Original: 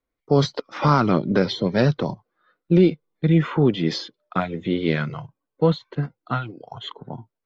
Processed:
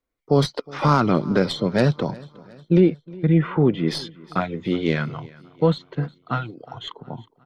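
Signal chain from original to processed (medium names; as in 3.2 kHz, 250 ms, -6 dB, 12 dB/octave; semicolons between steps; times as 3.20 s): tracing distortion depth 0.031 ms; 2.80–3.88 s: low-pass 2.3 kHz 12 dB/octave; on a send: feedback delay 362 ms, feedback 52%, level -22.5 dB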